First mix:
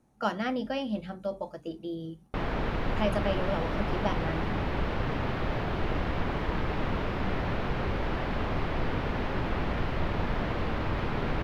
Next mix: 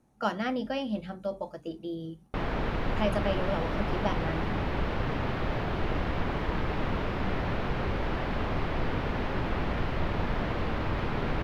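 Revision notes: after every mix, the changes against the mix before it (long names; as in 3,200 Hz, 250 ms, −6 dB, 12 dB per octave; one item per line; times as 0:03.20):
nothing changed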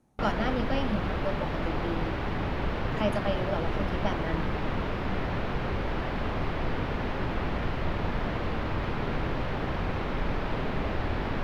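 background: entry −2.15 s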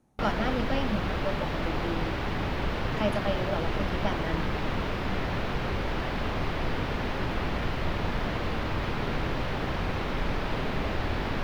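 background: add high-shelf EQ 3,700 Hz +9.5 dB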